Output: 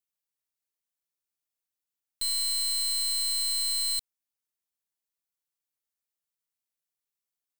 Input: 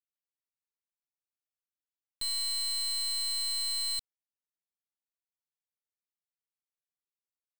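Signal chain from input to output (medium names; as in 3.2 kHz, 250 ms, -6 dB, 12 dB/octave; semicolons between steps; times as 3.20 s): treble shelf 5.2 kHz +7.5 dB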